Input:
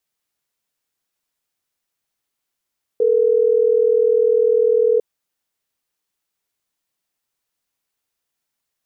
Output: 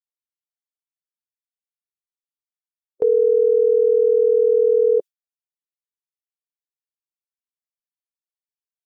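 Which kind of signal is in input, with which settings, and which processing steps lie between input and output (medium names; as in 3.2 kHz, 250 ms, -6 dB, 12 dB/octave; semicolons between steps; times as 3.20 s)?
call progress tone ringback tone, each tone -15 dBFS
expander on every frequency bin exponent 1.5; gate with hold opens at -12 dBFS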